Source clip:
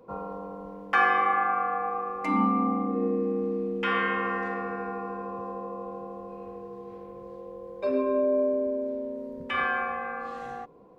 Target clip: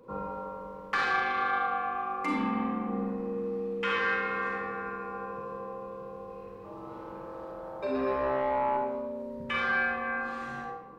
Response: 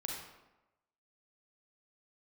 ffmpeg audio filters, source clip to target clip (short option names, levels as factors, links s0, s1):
-filter_complex "[0:a]asettb=1/sr,asplit=3[s0][s1][s2];[s0]atrim=end=6.524[s3];[s1]atrim=start=6.52:end=8.77,asetpts=PTS-STARTPTS,afade=t=in:d=0.004:c=qsin,afade=t=out:st=2.246:d=0.004:c=qsin,asplit=9[s4][s5][s6][s7][s8][s9][s10][s11][s12];[s5]adelay=122,afreqshift=130,volume=0.631[s13];[s6]adelay=244,afreqshift=260,volume=0.372[s14];[s7]adelay=366,afreqshift=390,volume=0.219[s15];[s8]adelay=488,afreqshift=520,volume=0.13[s16];[s9]adelay=610,afreqshift=650,volume=0.0767[s17];[s10]adelay=732,afreqshift=780,volume=0.0452[s18];[s11]adelay=854,afreqshift=910,volume=0.0266[s19];[s12]adelay=976,afreqshift=1040,volume=0.0157[s20];[s4][s13][s14][s15][s16][s17][s18][s19][s20]amix=inputs=9:normalize=0,atrim=end_sample=99225[s21];[s2]atrim=start=8.766[s22];[s3][s21]acrossfade=d=0.004:c1=hsin:c2=qsin[s23];[s23][s22]acrossfade=d=0.004:c1=qsin:c2=hsin,asoftclip=type=tanh:threshold=0.133,acompressor=threshold=0.0562:ratio=3,equalizer=f=700:t=o:w=0.21:g=-15[s24];[1:a]atrim=start_sample=2205[s25];[s24][s25]afir=irnorm=-1:irlink=0,volume=1.33"